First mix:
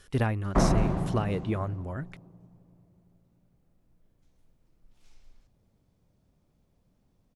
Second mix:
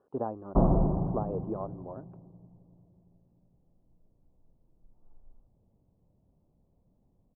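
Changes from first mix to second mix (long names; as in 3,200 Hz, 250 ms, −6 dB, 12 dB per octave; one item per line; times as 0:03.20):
speech: add high-pass filter 340 Hz 12 dB per octave
master: add inverse Chebyshev low-pass filter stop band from 1,900 Hz, stop band 40 dB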